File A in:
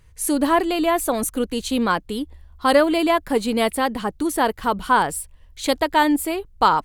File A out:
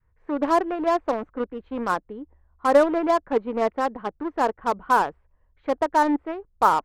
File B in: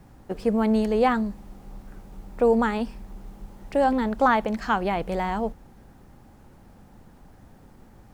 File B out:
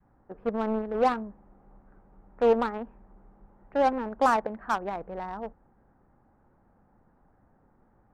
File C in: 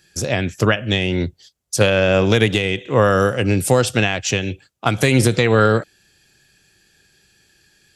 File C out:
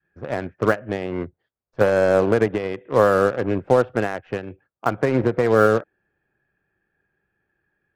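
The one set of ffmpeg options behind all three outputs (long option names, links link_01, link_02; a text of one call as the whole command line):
ffmpeg -i in.wav -filter_complex "[0:a]lowshelf=frequency=340:gain=-7,aeval=exprs='0.75*(cos(1*acos(clip(val(0)/0.75,-1,1)))-cos(1*PI/2))+0.0944*(cos(3*acos(clip(val(0)/0.75,-1,1)))-cos(3*PI/2))+0.00531*(cos(4*acos(clip(val(0)/0.75,-1,1)))-cos(4*PI/2))':channel_layout=same,lowpass=frequency=1600:width=0.5412,lowpass=frequency=1600:width=1.3066,asplit=2[link_01][link_02];[link_02]acrusher=bits=3:mix=0:aa=0.5,volume=-3.5dB[link_03];[link_01][link_03]amix=inputs=2:normalize=0,adynamicequalizer=threshold=0.0562:dfrequency=460:dqfactor=0.74:tfrequency=460:tqfactor=0.74:attack=5:release=100:ratio=0.375:range=2.5:mode=boostabove:tftype=bell,volume=-4dB" out.wav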